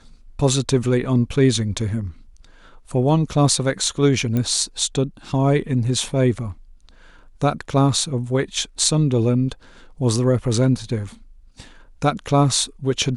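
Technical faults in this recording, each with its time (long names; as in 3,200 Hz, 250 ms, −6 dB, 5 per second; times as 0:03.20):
0:04.37: click −11 dBFS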